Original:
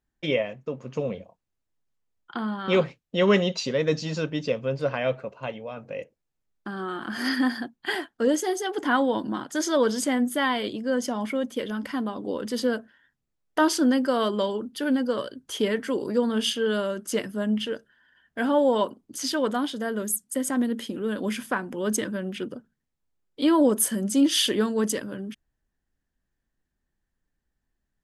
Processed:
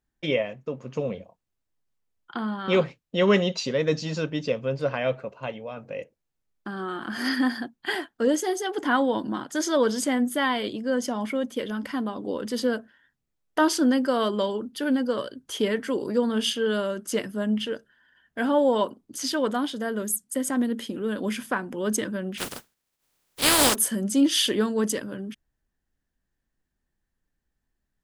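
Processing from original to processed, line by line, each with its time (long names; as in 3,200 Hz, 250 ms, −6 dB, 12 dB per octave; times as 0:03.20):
0:22.37–0:23.74: compressing power law on the bin magnitudes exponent 0.25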